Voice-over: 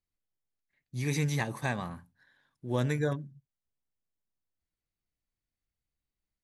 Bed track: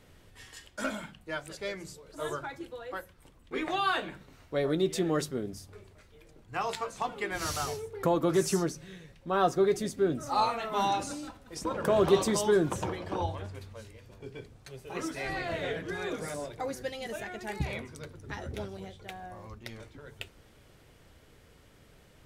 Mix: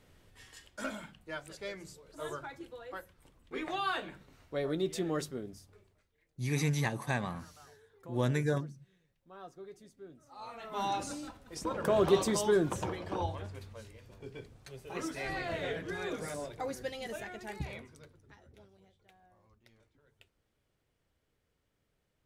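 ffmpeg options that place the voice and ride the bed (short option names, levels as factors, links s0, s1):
-filter_complex "[0:a]adelay=5450,volume=0.891[s0];[1:a]volume=6.31,afade=t=out:st=5.25:d=0.89:silence=0.11885,afade=t=in:st=10.39:d=0.7:silence=0.0891251,afade=t=out:st=17.07:d=1.31:silence=0.11885[s1];[s0][s1]amix=inputs=2:normalize=0"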